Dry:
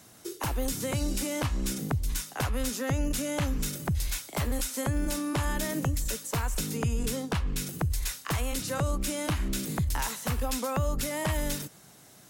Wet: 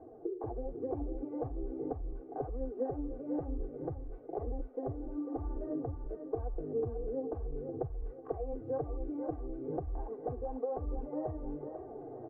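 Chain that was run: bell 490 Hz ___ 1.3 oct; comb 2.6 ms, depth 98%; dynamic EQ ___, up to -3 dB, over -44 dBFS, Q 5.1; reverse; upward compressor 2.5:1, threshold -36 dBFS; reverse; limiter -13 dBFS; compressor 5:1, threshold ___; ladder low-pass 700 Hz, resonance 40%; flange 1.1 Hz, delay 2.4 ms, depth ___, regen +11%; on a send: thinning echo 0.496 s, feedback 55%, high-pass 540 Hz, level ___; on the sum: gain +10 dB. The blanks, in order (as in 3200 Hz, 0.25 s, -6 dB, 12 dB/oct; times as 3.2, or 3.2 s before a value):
+7 dB, 110 Hz, -35 dBFS, 7 ms, -5 dB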